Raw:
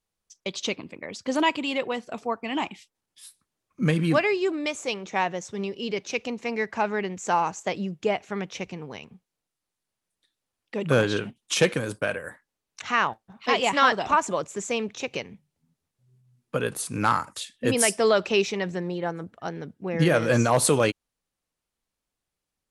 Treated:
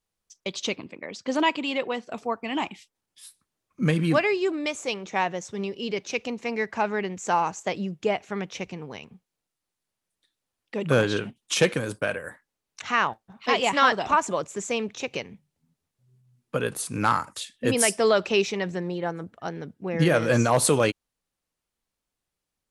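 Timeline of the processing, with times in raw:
0.86–2.11 BPF 150–7100 Hz

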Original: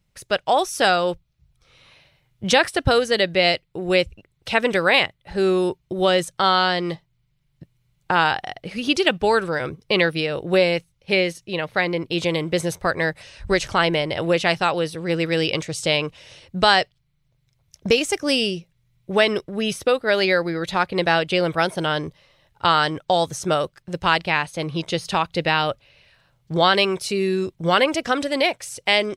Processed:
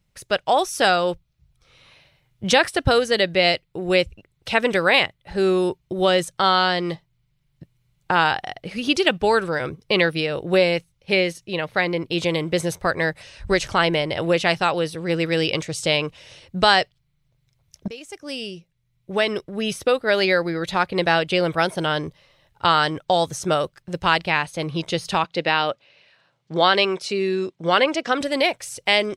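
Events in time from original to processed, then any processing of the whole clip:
17.88–19.96 fade in, from -22 dB
25.24–28.21 BPF 210–6300 Hz

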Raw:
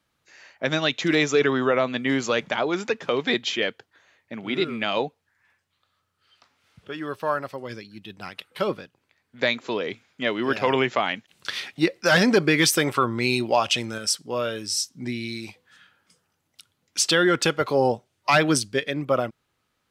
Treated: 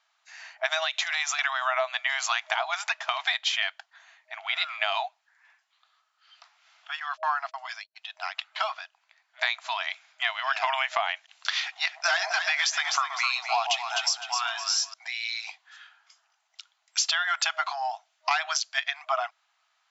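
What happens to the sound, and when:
0.78–1.39 compressor 5:1, threshold -22 dBFS
7–7.96 gate -41 dBFS, range -45 dB
11.59–14.94 echo with dull and thin repeats by turns 0.127 s, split 840 Hz, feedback 56%, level -4.5 dB
17.67–18.31 compressor, threshold -22 dBFS
whole clip: FFT band-pass 630–7600 Hz; compressor 6:1, threshold -27 dBFS; gain +4.5 dB

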